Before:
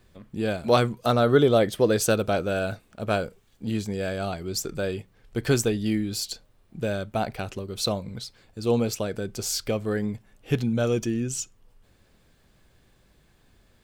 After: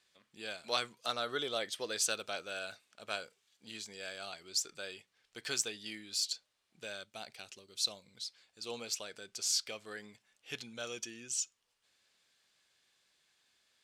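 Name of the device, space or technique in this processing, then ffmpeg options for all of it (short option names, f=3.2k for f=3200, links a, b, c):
piezo pickup straight into a mixer: -filter_complex "[0:a]asettb=1/sr,asplit=3[a][b][c];[a]atrim=end=7.034[d];[b]atrim=start=7.03:end=8.25,asetpts=PTS-STARTPTS,afade=t=in:d=0.004:c=qsin,afade=t=out:st=1.216:d=0.004:c=qsin,equalizer=f=1.2k:w=0.53:g=-7[e];[c]atrim=start=8.246[f];[d][e]acrossfade=d=0.004:c1=hsin:c2=qsin[g];[g][f]acrossfade=d=0.004:c1=qsin:c2=hsin,lowpass=5.3k,aderivative,volume=3.5dB"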